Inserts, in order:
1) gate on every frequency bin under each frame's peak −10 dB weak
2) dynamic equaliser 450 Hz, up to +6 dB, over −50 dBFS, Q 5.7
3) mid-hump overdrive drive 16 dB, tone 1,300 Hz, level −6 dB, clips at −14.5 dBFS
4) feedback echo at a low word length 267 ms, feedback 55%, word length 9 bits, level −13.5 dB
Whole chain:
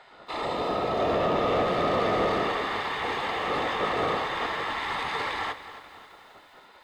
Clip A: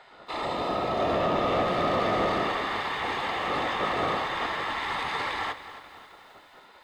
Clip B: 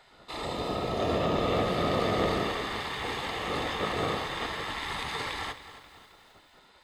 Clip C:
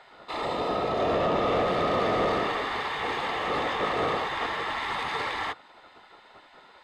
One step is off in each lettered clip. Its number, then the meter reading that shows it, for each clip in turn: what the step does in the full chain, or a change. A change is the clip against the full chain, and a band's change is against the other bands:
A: 2, 500 Hz band −1.5 dB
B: 3, change in crest factor +4.0 dB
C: 4, change in momentary loudness spread −2 LU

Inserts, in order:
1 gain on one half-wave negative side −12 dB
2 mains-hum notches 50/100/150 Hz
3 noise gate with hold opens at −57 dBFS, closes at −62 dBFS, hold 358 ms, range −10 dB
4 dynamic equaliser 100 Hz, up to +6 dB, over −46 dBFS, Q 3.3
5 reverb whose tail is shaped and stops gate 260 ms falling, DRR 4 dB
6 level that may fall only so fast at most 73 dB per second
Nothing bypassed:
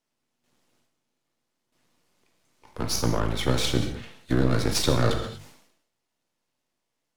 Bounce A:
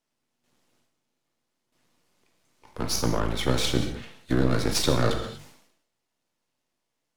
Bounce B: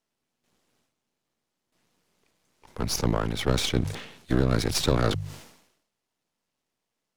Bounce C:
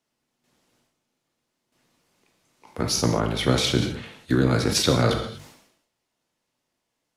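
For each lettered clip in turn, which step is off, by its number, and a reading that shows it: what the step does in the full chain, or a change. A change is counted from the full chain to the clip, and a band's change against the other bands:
4, 125 Hz band −2.0 dB
5, change in crest factor +1.5 dB
1, distortion level −5 dB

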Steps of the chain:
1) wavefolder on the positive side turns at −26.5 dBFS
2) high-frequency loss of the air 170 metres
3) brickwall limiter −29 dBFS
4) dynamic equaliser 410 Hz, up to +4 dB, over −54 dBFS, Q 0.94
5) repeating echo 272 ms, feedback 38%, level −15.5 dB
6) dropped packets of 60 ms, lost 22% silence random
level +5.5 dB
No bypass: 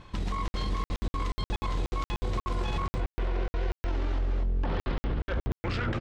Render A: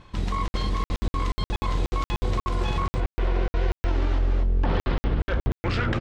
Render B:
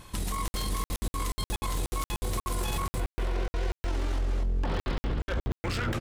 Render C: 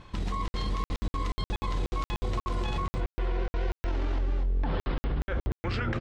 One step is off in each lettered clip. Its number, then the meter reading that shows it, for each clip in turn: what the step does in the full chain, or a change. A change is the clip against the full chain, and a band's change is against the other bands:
3, average gain reduction 5.0 dB
2, 4 kHz band +3.5 dB
1, distortion level −11 dB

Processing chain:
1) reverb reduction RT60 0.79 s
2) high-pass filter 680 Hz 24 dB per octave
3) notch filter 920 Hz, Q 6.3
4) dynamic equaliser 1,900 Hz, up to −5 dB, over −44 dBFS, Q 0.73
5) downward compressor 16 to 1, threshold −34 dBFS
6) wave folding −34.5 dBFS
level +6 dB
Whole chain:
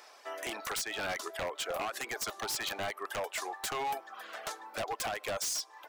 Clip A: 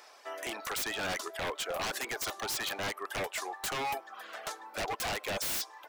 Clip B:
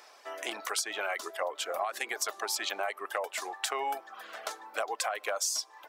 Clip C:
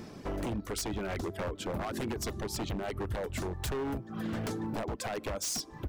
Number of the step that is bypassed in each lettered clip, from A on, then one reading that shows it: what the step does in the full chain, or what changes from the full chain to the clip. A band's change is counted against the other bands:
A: 5, average gain reduction 2.5 dB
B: 6, distortion level −4 dB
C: 2, 125 Hz band +20.0 dB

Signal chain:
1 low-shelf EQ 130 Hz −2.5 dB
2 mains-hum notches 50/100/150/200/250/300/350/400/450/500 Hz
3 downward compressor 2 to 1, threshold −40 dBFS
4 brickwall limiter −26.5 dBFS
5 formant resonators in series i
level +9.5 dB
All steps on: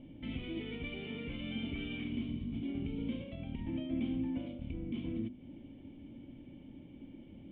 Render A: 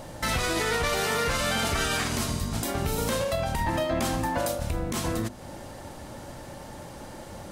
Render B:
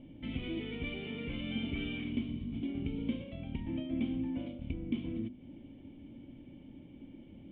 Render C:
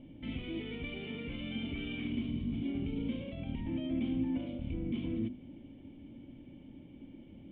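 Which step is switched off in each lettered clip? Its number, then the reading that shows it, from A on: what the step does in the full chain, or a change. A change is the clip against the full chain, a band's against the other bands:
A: 5, 1 kHz band +15.0 dB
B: 4, change in crest factor +2.5 dB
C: 3, average gain reduction 6.0 dB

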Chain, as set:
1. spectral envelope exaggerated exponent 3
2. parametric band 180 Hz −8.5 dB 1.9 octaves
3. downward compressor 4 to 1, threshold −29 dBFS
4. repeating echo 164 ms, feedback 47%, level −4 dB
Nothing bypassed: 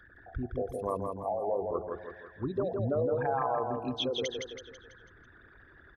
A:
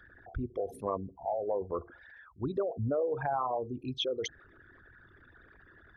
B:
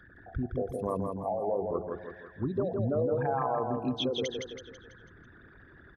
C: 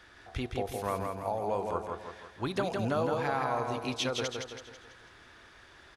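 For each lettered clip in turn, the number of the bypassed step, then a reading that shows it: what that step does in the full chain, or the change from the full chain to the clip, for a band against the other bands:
4, echo-to-direct ratio −3.0 dB to none audible
2, 250 Hz band +3.5 dB
1, 8 kHz band +5.0 dB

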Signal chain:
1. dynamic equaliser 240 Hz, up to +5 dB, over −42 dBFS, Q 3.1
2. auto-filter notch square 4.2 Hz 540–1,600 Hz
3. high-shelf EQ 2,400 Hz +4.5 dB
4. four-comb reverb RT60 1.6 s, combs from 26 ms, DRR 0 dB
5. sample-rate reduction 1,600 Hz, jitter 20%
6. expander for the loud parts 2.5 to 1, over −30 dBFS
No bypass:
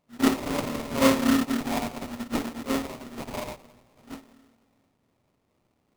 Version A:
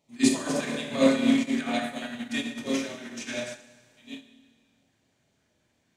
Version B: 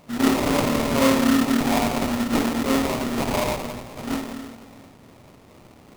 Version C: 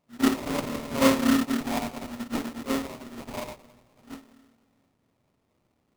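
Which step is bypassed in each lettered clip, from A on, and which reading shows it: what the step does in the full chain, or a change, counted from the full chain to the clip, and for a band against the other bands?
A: 5, change in crest factor +1.5 dB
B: 6, change in crest factor −4.5 dB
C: 3, change in momentary loudness spread −3 LU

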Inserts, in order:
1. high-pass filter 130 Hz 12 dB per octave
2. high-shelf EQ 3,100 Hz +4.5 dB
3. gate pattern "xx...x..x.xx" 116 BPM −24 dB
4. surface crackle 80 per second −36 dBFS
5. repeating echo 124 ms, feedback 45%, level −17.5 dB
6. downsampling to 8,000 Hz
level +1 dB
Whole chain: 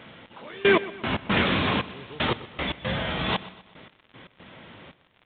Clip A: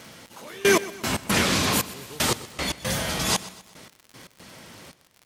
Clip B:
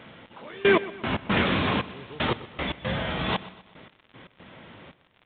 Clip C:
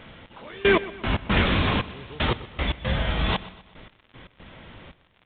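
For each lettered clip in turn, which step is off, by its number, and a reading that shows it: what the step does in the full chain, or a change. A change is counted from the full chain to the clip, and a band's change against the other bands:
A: 6, 4 kHz band +3.0 dB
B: 2, 4 kHz band −2.5 dB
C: 1, 125 Hz band +5.0 dB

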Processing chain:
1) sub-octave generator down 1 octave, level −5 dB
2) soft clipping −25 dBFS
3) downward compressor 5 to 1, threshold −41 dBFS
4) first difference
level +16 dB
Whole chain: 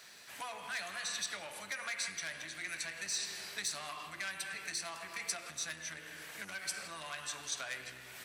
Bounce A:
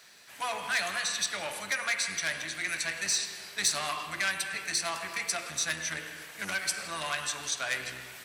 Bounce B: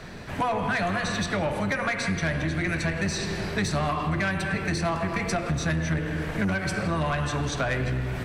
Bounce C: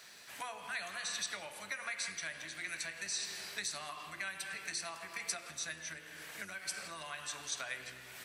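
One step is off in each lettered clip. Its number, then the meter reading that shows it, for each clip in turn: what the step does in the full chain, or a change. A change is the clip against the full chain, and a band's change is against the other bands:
3, average gain reduction 8.0 dB
4, 125 Hz band +19.5 dB
2, distortion level −14 dB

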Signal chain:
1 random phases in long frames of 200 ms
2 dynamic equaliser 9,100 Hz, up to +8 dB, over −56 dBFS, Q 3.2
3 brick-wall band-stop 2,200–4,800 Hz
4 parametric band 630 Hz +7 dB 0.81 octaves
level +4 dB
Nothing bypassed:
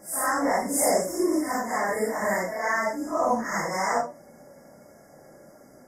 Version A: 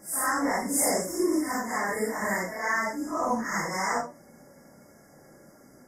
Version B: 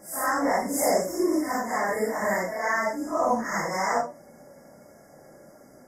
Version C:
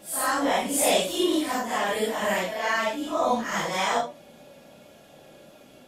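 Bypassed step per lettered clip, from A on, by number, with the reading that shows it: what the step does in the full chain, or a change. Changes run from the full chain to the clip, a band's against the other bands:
4, 500 Hz band −4.5 dB
2, change in momentary loudness spread −1 LU
3, 4 kHz band +11.5 dB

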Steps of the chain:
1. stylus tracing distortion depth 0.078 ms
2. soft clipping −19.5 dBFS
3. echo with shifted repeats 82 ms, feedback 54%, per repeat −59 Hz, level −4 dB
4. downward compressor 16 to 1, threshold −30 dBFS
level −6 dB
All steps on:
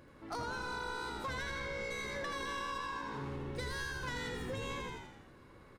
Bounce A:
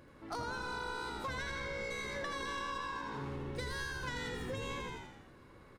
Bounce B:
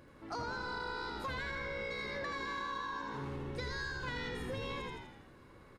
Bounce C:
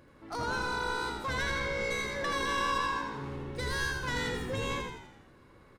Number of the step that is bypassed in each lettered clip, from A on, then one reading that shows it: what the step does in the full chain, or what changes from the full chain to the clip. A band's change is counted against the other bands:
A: 2, distortion level −20 dB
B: 1, 8 kHz band −7.5 dB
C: 4, average gain reduction 5.0 dB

